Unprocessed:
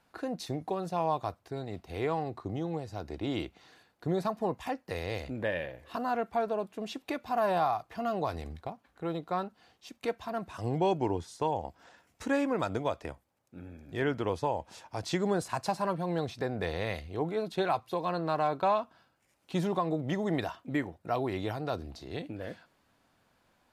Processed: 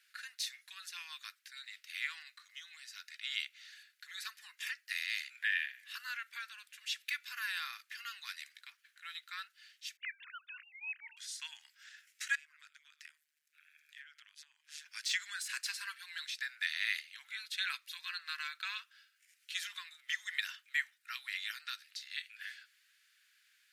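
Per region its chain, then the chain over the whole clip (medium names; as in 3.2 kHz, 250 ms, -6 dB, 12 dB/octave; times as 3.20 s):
9.97–11.17 s: formants replaced by sine waves + high-pass 960 Hz
12.35–14.86 s: AM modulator 150 Hz, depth 70% + compression 20:1, threshold -44 dBFS
whole clip: steep high-pass 1.6 kHz 48 dB/octave; de-esser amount 95%; trim +6 dB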